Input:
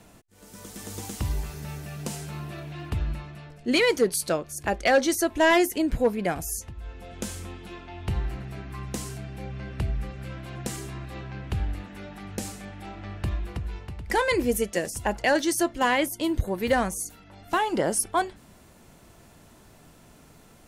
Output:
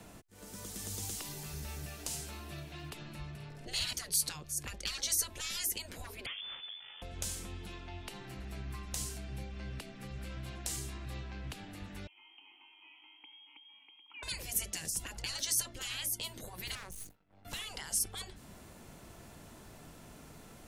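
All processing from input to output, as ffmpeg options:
-filter_complex "[0:a]asettb=1/sr,asplit=3[a][b][c];[a]atrim=end=3.354[d];[b]atrim=start=3.35:end=3.93,asetpts=PTS-STARTPTS,afade=t=in:d=0.004:c=qsin,afade=t=out:st=0.576:d=0.004:c=qsin,asplit=2[e][f];[f]adelay=49,volume=-3dB[g];[e][g]amix=inputs=2:normalize=0,atrim=end_sample=25578,tremolo=f=260:d=0.667,acompressor=mode=upward:threshold=-41dB:ratio=2.5:attack=3.2:release=140:knee=2.83:detection=peak[h];[c]atrim=start=3.926[i];[d][h]acrossfade=d=0.004:c1=hsin:c2=qsin[j];[j][i]acrossfade=d=0.004:c1=qsin:c2=hsin,asettb=1/sr,asplit=3[k][l][m];[k]atrim=end=6.264[n];[l]atrim=start=6.26:end=7.02,asetpts=PTS-STARTPTS,afade=t=in:d=0.004:c=qsin,afade=t=out:st=0.756:d=0.004:c=qsin,highpass=f=91:w=0.5412,highpass=f=91:w=1.3066,aeval=exprs='max(val(0),0)':c=same,lowpass=f=3k:t=q:w=0.5098,lowpass=f=3k:t=q:w=0.6013,lowpass=f=3k:t=q:w=0.9,lowpass=f=3k:t=q:w=2.563,afreqshift=-3500[o];[m]atrim=start=7.016[p];[n][o]acrossfade=d=0.004:c1=hsin:c2=qsin[q];[q][p]acrossfade=d=0.004:c1=qsin:c2=hsin,asettb=1/sr,asplit=3[r][s][t];[r]atrim=end=12.074[u];[s]atrim=start=12.07:end=14.23,asetpts=PTS-STARTPTS,afade=t=in:d=0.004:c=qsin,afade=t=out:st=2.156:d=0.004:c=qsin,lowpass=f=2.8k:t=q:w=0.5098,lowpass=f=2.8k:t=q:w=0.6013,lowpass=f=2.8k:t=q:w=0.9,lowpass=f=2.8k:t=q:w=2.563,afreqshift=-3300,acompressor=threshold=-37dB:ratio=2.5:attack=3.2:release=140:knee=1:detection=peak,asplit=3[v][w][x];[v]bandpass=f=300:t=q:w=8,volume=0dB[y];[w]bandpass=f=870:t=q:w=8,volume=-6dB[z];[x]bandpass=f=2.24k:t=q:w=8,volume=-9dB[aa];[y][z][aa]amix=inputs=3:normalize=0[ab];[t]atrim=start=14.226[ac];[u][ab]acrossfade=d=0.004:c1=hsin:c2=qsin[ad];[ad][ac]acrossfade=d=0.004:c1=qsin:c2=hsin,asettb=1/sr,asplit=3[ae][af][ag];[ae]atrim=end=16.754[ah];[af]atrim=start=16.75:end=17.45,asetpts=PTS-STARTPTS,afade=t=in:d=0.004:c=qsin,afade=t=out:st=0.696:d=0.004:c=qsin,agate=range=-33dB:threshold=-40dB:ratio=3:release=100:detection=peak,equalizer=f=7k:w=0.35:g=-11.5,aeval=exprs='max(val(0),0)':c=same[ai];[ag]atrim=start=17.446[aj];[ah][ai]acrossfade=d=0.004:c1=hsin:c2=qsin[ak];[ak][aj]acrossfade=d=0.004:c1=qsin:c2=hsin,afftfilt=real='re*lt(hypot(re,im),0.126)':imag='im*lt(hypot(re,im),0.126)':win_size=1024:overlap=0.75,acrossover=split=130|3000[al][am][an];[am]acompressor=threshold=-48dB:ratio=6[ao];[al][ao][an]amix=inputs=3:normalize=0"

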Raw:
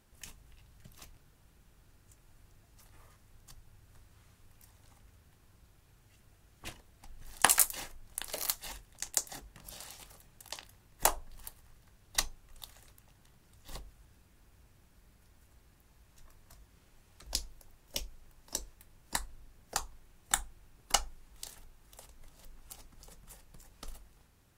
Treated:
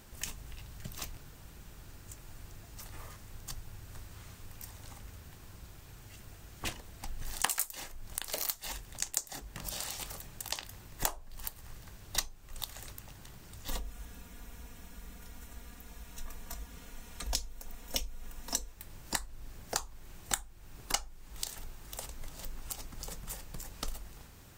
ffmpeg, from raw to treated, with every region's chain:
-filter_complex "[0:a]asettb=1/sr,asplit=3[a][b][c];[a]atrim=end=13.694[d];[b]atrim=start=13.69:end=18.72,asetpts=PTS-STARTPTS,afade=t=in:d=0.004:c=qsin,afade=t=out:st=5.026:d=0.004:c=qsin,bandreject=f=4.7k:w=9.1,aecho=1:1:4.2:0.78,atrim=end_sample=221823[e];[c]atrim=start=18.716[f];[d][e]acrossfade=d=0.004:c1=hsin:c2=qsin[g];[g][f]acrossfade=d=0.004:c1=qsin:c2=hsin,highshelf=f=7.5k:g=6,acompressor=threshold=-45dB:ratio=3,equalizer=f=11k:w=3.6:g=-11,volume=11.5dB"

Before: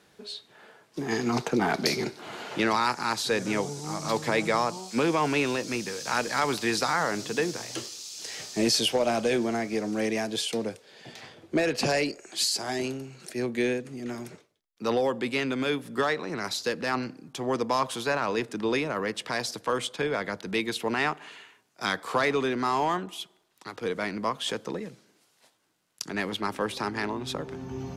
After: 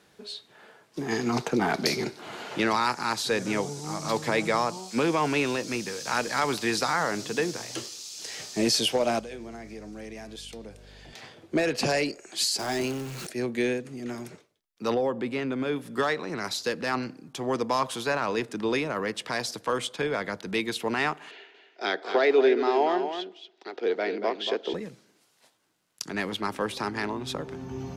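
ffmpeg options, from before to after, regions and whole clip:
-filter_complex "[0:a]asettb=1/sr,asplit=3[a][b][c];[a]atrim=end=9.194[d];[b]atrim=start=9.19:end=11.13,asetpts=PTS-STARTPTS,afade=t=in:d=0.004:c=qsin,afade=t=out:st=1.936:d=0.004:c=qsin,bandreject=f=121.6:t=h:w=4,bandreject=f=243.2:t=h:w=4,bandreject=f=364.8:t=h:w=4,bandreject=f=486.4:t=h:w=4,bandreject=f=608:t=h:w=4,bandreject=f=729.6:t=h:w=4,bandreject=f=851.2:t=h:w=4,bandreject=f=972.8:t=h:w=4,bandreject=f=1.0944k:t=h:w=4,bandreject=f=1.216k:t=h:w=4,bandreject=f=1.3376k:t=h:w=4,bandreject=f=1.4592k:t=h:w=4,bandreject=f=1.5808k:t=h:w=4,bandreject=f=1.7024k:t=h:w=4,bandreject=f=1.824k:t=h:w=4,bandreject=f=1.9456k:t=h:w=4,bandreject=f=2.0672k:t=h:w=4,bandreject=f=2.1888k:t=h:w=4,bandreject=f=2.3104k:t=h:w=4,bandreject=f=2.432k:t=h:w=4,bandreject=f=2.5536k:t=h:w=4,bandreject=f=2.6752k:t=h:w=4,bandreject=f=2.7968k:t=h:w=4,bandreject=f=2.9184k:t=h:w=4,bandreject=f=3.04k:t=h:w=4,bandreject=f=3.1616k:t=h:w=4,bandreject=f=3.2832k:t=h:w=4,bandreject=f=3.4048k:t=h:w=4,bandreject=f=3.5264k:t=h:w=4,bandreject=f=3.648k:t=h:w=4,bandreject=f=3.7696k:t=h:w=4,bandreject=f=3.8912k:t=h:w=4,bandreject=f=4.0128k:t=h:w=4,bandreject=f=4.1344k:t=h:w=4,bandreject=f=4.256k:t=h:w=4,bandreject=f=4.3776k:t=h:w=4,bandreject=f=4.4992k:t=h:w=4,bandreject=f=4.6208k:t=h:w=4,acompressor=threshold=-48dB:ratio=2:attack=3.2:release=140:knee=1:detection=peak,aeval=exprs='val(0)+0.00316*(sin(2*PI*50*n/s)+sin(2*PI*2*50*n/s)/2+sin(2*PI*3*50*n/s)/3+sin(2*PI*4*50*n/s)/4+sin(2*PI*5*50*n/s)/5)':c=same[e];[c]atrim=start=11.126[f];[d][e]acrossfade=d=0.004:c1=hsin:c2=qsin[g];[g][f]acrossfade=d=0.004:c1=qsin:c2=hsin,asettb=1/sr,asplit=3[h][i][j];[h]atrim=end=12.594[k];[i]atrim=start=12.59:end=13.27,asetpts=PTS-STARTPTS,afade=t=in:d=0.004:c=qsin,afade=t=out:st=0.676:d=0.004:c=qsin,aeval=exprs='val(0)+0.5*0.0178*sgn(val(0))':c=same,acompressor=mode=upward:threshold=-35dB:ratio=2.5:attack=3.2:release=140:knee=2.83:detection=peak[l];[j]atrim=start=13.266[m];[k][l]acrossfade=d=0.004:c1=hsin:c2=qsin[n];[n][m]acrossfade=d=0.004:c1=qsin:c2=hsin,asettb=1/sr,asplit=3[o][p][q];[o]atrim=end=14.944[r];[p]atrim=start=14.94:end=15.76,asetpts=PTS-STARTPTS,afade=t=in:d=0.004:c=qsin,afade=t=out:st=0.816:d=0.004:c=qsin,highshelf=f=2.2k:g=-12,acompressor=mode=upward:threshold=-29dB:ratio=2.5:attack=3.2:release=140:knee=2.83:detection=peak[s];[q]atrim=start=15.756[t];[r][s]acrossfade=d=0.004:c1=hsin:c2=qsin[u];[u][t]acrossfade=d=0.004:c1=qsin:c2=hsin,asettb=1/sr,asplit=3[v][w][x];[v]atrim=end=21.314[y];[w]atrim=start=21.31:end=24.74,asetpts=PTS-STARTPTS,afade=t=in:d=0.004:c=qsin,afade=t=out:st=3.426:d=0.004:c=qsin,highpass=f=270:w=0.5412,highpass=f=270:w=1.3066,equalizer=f=390:t=q:w=4:g=10,equalizer=f=690:t=q:w=4:g=7,equalizer=f=1.1k:t=q:w=4:g=-10,lowpass=f=4.9k:w=0.5412,lowpass=f=4.9k:w=1.3066,aecho=1:1:233:0.376,atrim=end_sample=151263[z];[x]atrim=start=24.736[aa];[y][z]acrossfade=d=0.004:c1=hsin:c2=qsin[ab];[ab][aa]acrossfade=d=0.004:c1=qsin:c2=hsin"

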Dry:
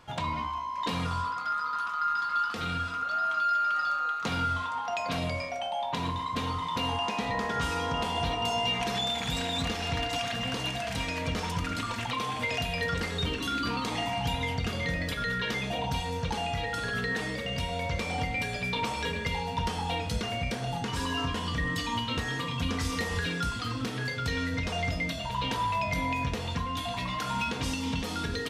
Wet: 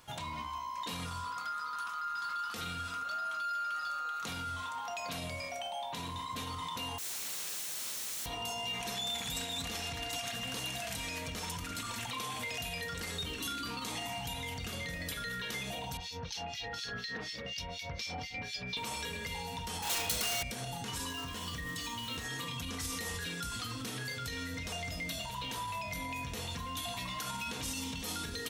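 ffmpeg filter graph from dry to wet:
-filter_complex "[0:a]asettb=1/sr,asplit=3[a][b][c];[a]atrim=end=6.984[d];[b]atrim=start=6.98:end=8.26,asetpts=PTS-STARTPTS,afade=t=in:d=0.004:c=qsin,afade=t=out:st=1.276:d=0.004:c=qsin,aeval=exprs='(mod(59.6*val(0)+1,2)-1)/59.6':c=same,highpass=110,lowpass=7.4k,acrusher=bits=9:dc=4:mix=0:aa=0.000001[e];[c]atrim=start=8.256[f];[d][e]acrossfade=d=0.004:c1=hsin:c2=qsin[g];[g][f]acrossfade=d=0.004:c1=qsin:c2=hsin,asettb=1/sr,asplit=3[h][i][j];[h]atrim=end=15.974[k];[i]atrim=start=15.97:end=18.77,asetpts=PTS-STARTPTS,afade=t=in:d=0.004:c=qsin,afade=t=out:st=2.796:d=0.004:c=qsin,acrossover=split=2100[l][m];[l]aeval=exprs='val(0)*(1-1/2+1/2*cos(2*PI*4.1*n/s))':c=same[n];[m]aeval=exprs='val(0)*(1-1/2-1/2*cos(2*PI*4.1*n/s))':c=same[o];[n][o]amix=inputs=2:normalize=0,highshelf=f=6.9k:t=q:w=3:g=-9.5[p];[j]atrim=start=18.766[q];[k][p]acrossfade=d=0.004:c1=hsin:c2=qsin[r];[r][q]acrossfade=d=0.004:c1=qsin:c2=hsin,asettb=1/sr,asplit=3[s][t][u];[s]atrim=end=19.824[v];[t]atrim=start=19.82:end=20.43,asetpts=PTS-STARTPTS,afade=t=in:d=0.004:c=qsin,afade=t=out:st=0.606:d=0.004:c=qsin,asplit=2[w][x];[x]highpass=f=720:p=1,volume=13dB,asoftclip=type=tanh:threshold=-18.5dB[y];[w][y]amix=inputs=2:normalize=0,lowpass=f=5.9k:p=1,volume=-6dB,aeval=exprs='0.0422*(abs(mod(val(0)/0.0422+3,4)-2)-1)':c=same[z];[u]atrim=start=20.426[aa];[v][z]acrossfade=d=0.004:c1=hsin:c2=qsin[ab];[ab][aa]acrossfade=d=0.004:c1=qsin:c2=hsin,asettb=1/sr,asplit=3[ac][ad][ae];[ac]atrim=end=21.114[af];[ad]atrim=start=21.11:end=22.24,asetpts=PTS-STARTPTS,afade=t=in:d=0.004:c=qsin,afade=t=out:st=1.126:d=0.004:c=qsin,bandreject=f=860:w=22,aeval=exprs='sgn(val(0))*max(abs(val(0))-0.00473,0)':c=same,acrossover=split=8800[ag][ah];[ah]acompressor=threshold=-59dB:ratio=4:attack=1:release=60[ai];[ag][ai]amix=inputs=2:normalize=0[aj];[ae]atrim=start=22.236[ak];[af][aj]acrossfade=d=0.004:c1=hsin:c2=qsin[al];[al][ak]acrossfade=d=0.004:c1=qsin:c2=hsin,bandreject=f=4.8k:w=18,alimiter=level_in=2.5dB:limit=-24dB:level=0:latency=1:release=53,volume=-2.5dB,aemphasis=mode=production:type=75fm,volume=-5.5dB"

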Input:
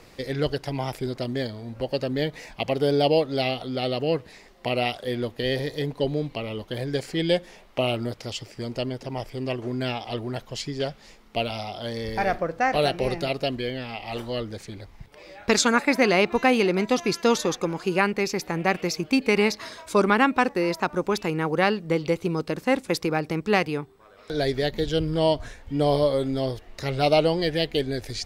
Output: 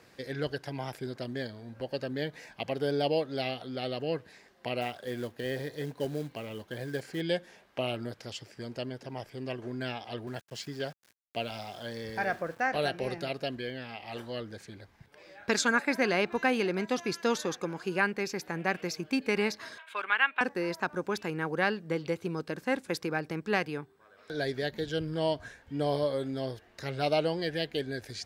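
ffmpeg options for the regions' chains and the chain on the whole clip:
-filter_complex "[0:a]asettb=1/sr,asplit=3[a][b][c];[a]atrim=end=4.814[d];[b]atrim=start=4.81:end=7.21,asetpts=PTS-STARTPTS,afade=t=in:d=0.004:c=qsin,afade=t=out:st=2.396:d=0.004:c=qsin,acrossover=split=2600[e][f];[f]acompressor=threshold=-40dB:ratio=4:attack=1:release=60[g];[e][g]amix=inputs=2:normalize=0,acrusher=bits=5:mode=log:mix=0:aa=0.000001[h];[c]atrim=start=7.206[i];[d][h]acrossfade=d=0.004:c1=hsin:c2=qsin[j];[j][i]acrossfade=d=0.004:c1=qsin:c2=hsin,asettb=1/sr,asplit=3[k][l][m];[k]atrim=end=10.274[n];[l]atrim=start=10.27:end=12.67,asetpts=PTS-STARTPTS,afade=t=in:d=0.004:c=qsin,afade=t=out:st=2.396:d=0.004:c=qsin,highpass=f=42:w=0.5412,highpass=f=42:w=1.3066,aeval=exprs='val(0)*gte(abs(val(0)),0.00794)':c=same[o];[m]atrim=start=12.666[p];[n][o]acrossfade=d=0.004:c1=hsin:c2=qsin[q];[q][p]acrossfade=d=0.004:c1=qsin:c2=hsin,asettb=1/sr,asplit=3[r][s][t];[r]atrim=end=19.784[u];[s]atrim=start=19.78:end=20.41,asetpts=PTS-STARTPTS,afade=t=in:d=0.004:c=qsin,afade=t=out:st=0.626:d=0.004:c=qsin,highpass=1.1k,highshelf=f=4.1k:t=q:w=3:g=-11[v];[t]atrim=start=20.406[w];[u][v]acrossfade=d=0.004:c1=hsin:c2=qsin[x];[x][w]acrossfade=d=0.004:c1=qsin:c2=hsin,highpass=88,equalizer=f=1.6k:t=o:w=0.2:g=10,volume=-8dB"

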